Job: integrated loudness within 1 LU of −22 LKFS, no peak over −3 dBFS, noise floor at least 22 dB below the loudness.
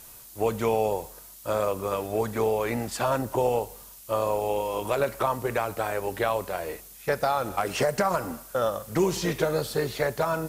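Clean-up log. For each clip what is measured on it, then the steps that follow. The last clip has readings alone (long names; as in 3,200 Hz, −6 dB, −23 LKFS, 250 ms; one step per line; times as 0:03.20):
background noise floor −47 dBFS; target noise floor −50 dBFS; integrated loudness −27.5 LKFS; sample peak −12.0 dBFS; target loudness −22.0 LKFS
→ broadband denoise 6 dB, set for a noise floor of −47 dBFS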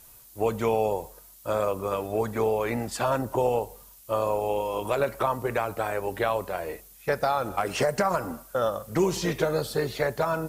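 background noise floor −51 dBFS; integrated loudness −27.5 LKFS; sample peak −12.5 dBFS; target loudness −22.0 LKFS
→ level +5.5 dB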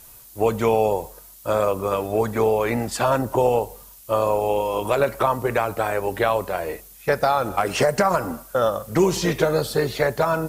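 integrated loudness −22.0 LKFS; sample peak −7.0 dBFS; background noise floor −46 dBFS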